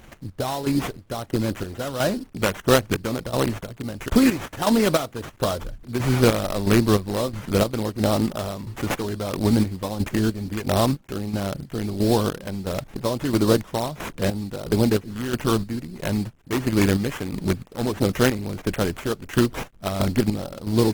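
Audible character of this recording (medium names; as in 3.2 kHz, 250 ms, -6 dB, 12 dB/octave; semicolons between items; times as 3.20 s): a quantiser's noise floor 10-bit, dither none; chopped level 1.5 Hz, depth 60%, duty 45%; aliases and images of a low sample rate 4.6 kHz, jitter 20%; Opus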